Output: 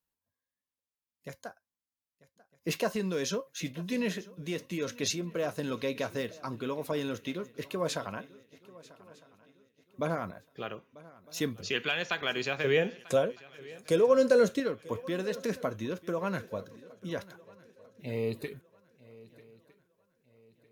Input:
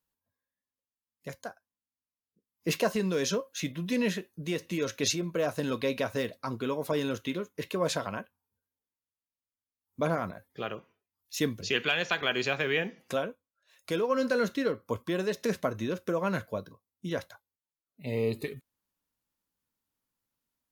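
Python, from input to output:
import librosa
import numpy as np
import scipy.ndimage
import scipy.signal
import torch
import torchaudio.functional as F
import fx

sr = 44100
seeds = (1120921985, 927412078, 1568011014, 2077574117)

y = fx.graphic_eq_10(x, sr, hz=(125, 500, 8000), db=(9, 9, 10), at=(12.64, 14.6))
y = fx.echo_swing(y, sr, ms=1256, ratio=3, feedback_pct=34, wet_db=-20.5)
y = y * librosa.db_to_amplitude(-3.0)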